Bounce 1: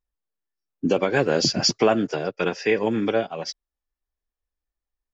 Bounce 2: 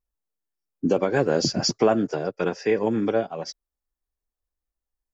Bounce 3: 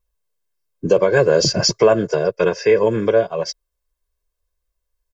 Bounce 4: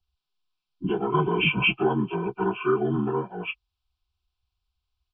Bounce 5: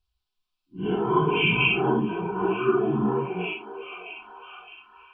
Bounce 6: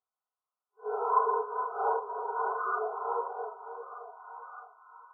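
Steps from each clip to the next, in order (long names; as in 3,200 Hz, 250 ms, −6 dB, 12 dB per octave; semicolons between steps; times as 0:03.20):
parametric band 2,900 Hz −9 dB 1.5 octaves
comb filter 1.9 ms, depth 79%; in parallel at +0.5 dB: brickwall limiter −13.5 dBFS, peak gain reduction 8.5 dB
partials spread apart or drawn together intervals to 76%; phaser with its sweep stopped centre 1,900 Hz, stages 6
random phases in long frames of 200 ms; echo through a band-pass that steps 614 ms, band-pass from 540 Hz, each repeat 0.7 octaves, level −9 dB; level +1 dB
linear-phase brick-wall band-pass 420–1,500 Hz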